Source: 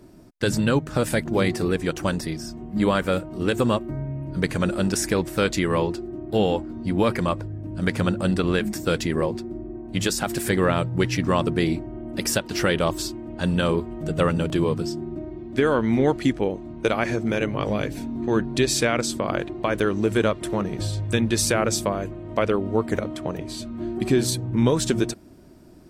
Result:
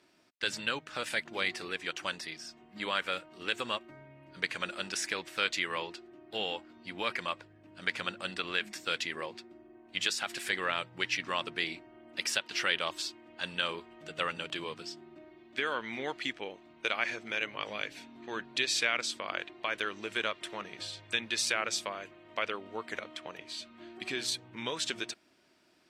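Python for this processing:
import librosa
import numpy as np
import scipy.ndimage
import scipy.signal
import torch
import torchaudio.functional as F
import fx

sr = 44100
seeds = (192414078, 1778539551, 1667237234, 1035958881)

y = fx.bandpass_q(x, sr, hz=2800.0, q=1.2)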